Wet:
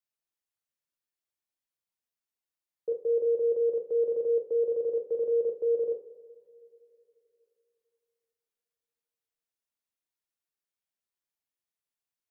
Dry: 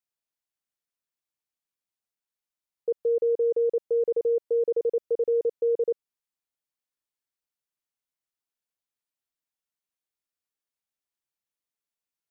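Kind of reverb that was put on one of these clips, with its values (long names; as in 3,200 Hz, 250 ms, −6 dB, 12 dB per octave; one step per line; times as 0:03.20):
coupled-rooms reverb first 0.42 s, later 3.1 s, from −20 dB, DRR 2.5 dB
level −4.5 dB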